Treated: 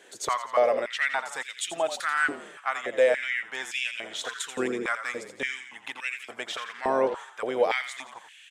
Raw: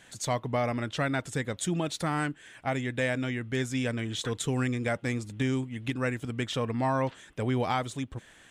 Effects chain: frequency-shifting echo 85 ms, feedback 50%, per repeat -41 Hz, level -10 dB; stepped high-pass 3.5 Hz 400–2600 Hz

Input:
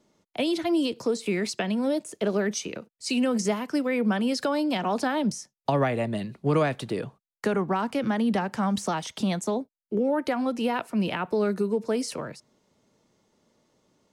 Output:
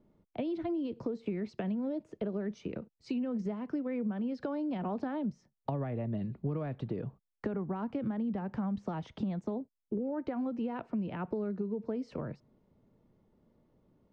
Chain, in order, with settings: tilt -3.5 dB/oct; compressor, threshold -25 dBFS, peak gain reduction 12.5 dB; air absorption 170 m; gain -6.5 dB

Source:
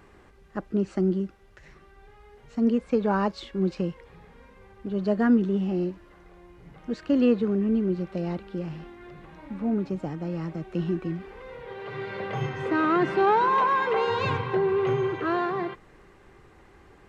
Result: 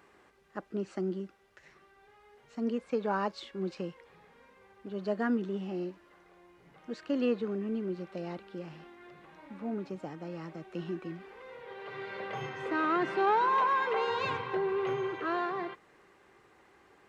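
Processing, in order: HPF 420 Hz 6 dB/oct; gain -4 dB

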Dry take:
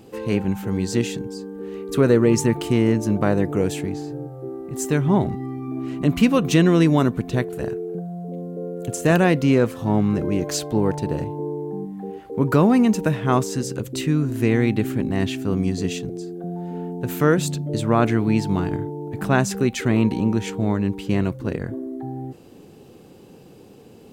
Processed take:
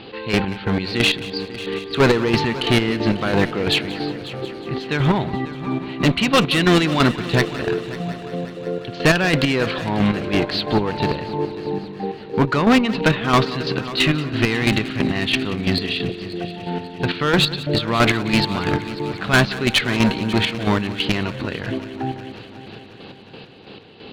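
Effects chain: Chebyshev low-pass 4400 Hz, order 6; tilt shelf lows -8.5 dB, about 1200 Hz; in parallel at -8 dB: sine folder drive 11 dB, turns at -4.5 dBFS; on the sum: chopper 3 Hz, depth 65%, duty 35%; one-sided clip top -18 dBFS; on a send: multi-head echo 0.181 s, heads first and third, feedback 66%, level -17 dB; on the sum: gain +4 dB

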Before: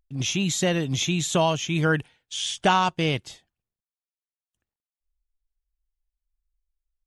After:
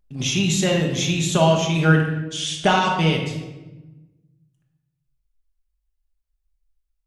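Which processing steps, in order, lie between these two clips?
vocal rider 2 s; shoebox room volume 600 m³, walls mixed, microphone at 1.3 m

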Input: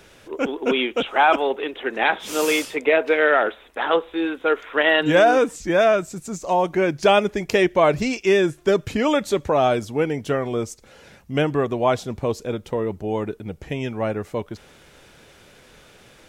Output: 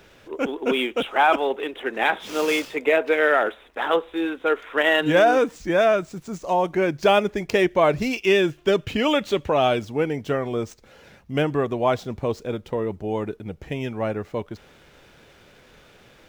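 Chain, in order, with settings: median filter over 5 samples; 8.13–9.82 bell 2900 Hz +8.5 dB 0.53 oct; gain -1.5 dB

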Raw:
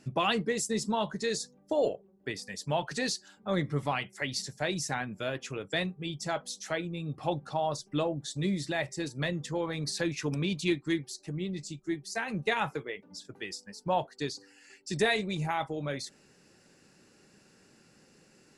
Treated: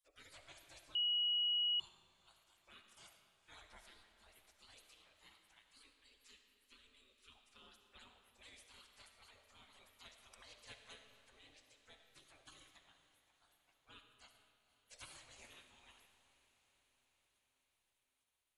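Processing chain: spectral gate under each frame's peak -30 dB weak; 3.62–4.32 low shelf 500 Hz +7 dB; 5.59–7.3 fixed phaser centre 310 Hz, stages 4; diffused feedback echo 0.491 s, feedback 66%, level -15.5 dB; reverb RT60 1.8 s, pre-delay 25 ms, DRR 6 dB; 0.95–1.8 bleep 2910 Hz -24 dBFS; gain -8.5 dB

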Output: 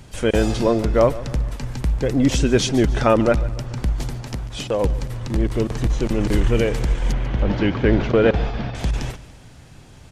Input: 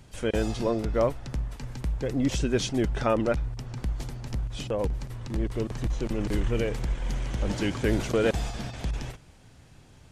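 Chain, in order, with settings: 4.21–4.82 low shelf 170 Hz -8.5 dB; 7.12–8.75 Gaussian blur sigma 2.3 samples; feedback echo 0.144 s, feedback 50%, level -18 dB; gain +8.5 dB

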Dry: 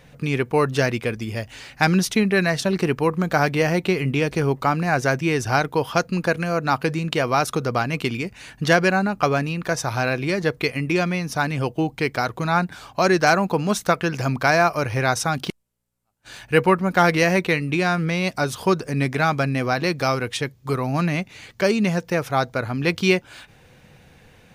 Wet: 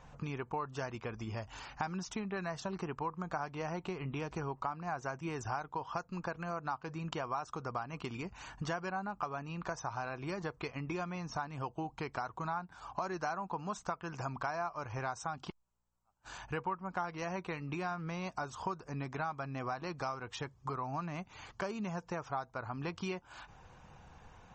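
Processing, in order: graphic EQ 125/250/500/1000/2000/4000/8000 Hz -7/-7/-9/+8/-11/-10/-5 dB; compressor 4:1, threshold -37 dBFS, peak gain reduction 19.5 dB; MP3 32 kbps 48000 Hz

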